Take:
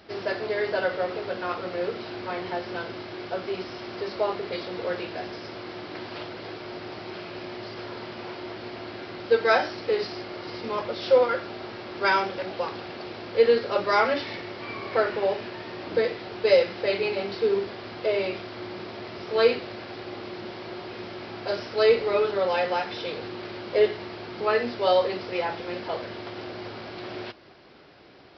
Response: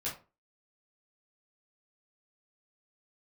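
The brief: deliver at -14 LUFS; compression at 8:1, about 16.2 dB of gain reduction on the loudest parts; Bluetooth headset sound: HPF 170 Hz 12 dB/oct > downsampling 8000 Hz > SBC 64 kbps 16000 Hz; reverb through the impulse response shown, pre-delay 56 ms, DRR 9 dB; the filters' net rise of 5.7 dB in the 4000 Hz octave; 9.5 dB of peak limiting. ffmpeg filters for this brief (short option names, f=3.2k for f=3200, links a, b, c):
-filter_complex "[0:a]equalizer=f=4k:t=o:g=7,acompressor=threshold=-31dB:ratio=8,alimiter=level_in=6.5dB:limit=-24dB:level=0:latency=1,volume=-6.5dB,asplit=2[a][b];[1:a]atrim=start_sample=2205,adelay=56[c];[b][c]afir=irnorm=-1:irlink=0,volume=-11.5dB[d];[a][d]amix=inputs=2:normalize=0,highpass=170,aresample=8000,aresample=44100,volume=25.5dB" -ar 16000 -c:a sbc -b:a 64k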